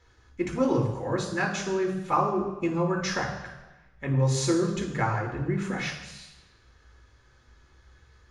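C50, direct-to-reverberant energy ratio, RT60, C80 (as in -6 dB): 6.5 dB, -0.5 dB, 1.1 s, 8.5 dB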